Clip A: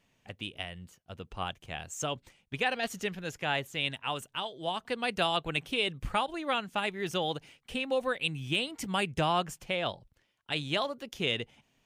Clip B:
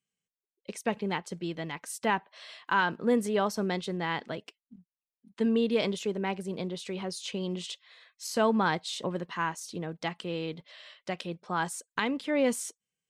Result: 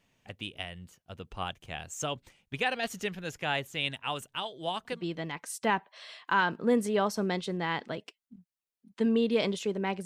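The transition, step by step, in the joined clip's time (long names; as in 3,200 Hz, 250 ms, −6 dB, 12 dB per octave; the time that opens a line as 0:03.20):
clip A
0:04.96: continue with clip B from 0:01.36, crossfade 0.16 s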